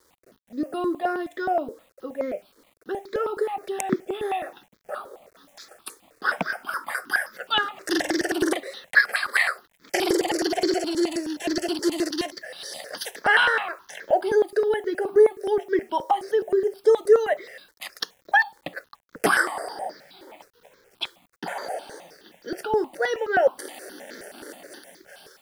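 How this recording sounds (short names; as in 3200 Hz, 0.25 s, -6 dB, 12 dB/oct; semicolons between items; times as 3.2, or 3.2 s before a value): a quantiser's noise floor 10-bit, dither none; notches that jump at a steady rate 9.5 Hz 710–2800 Hz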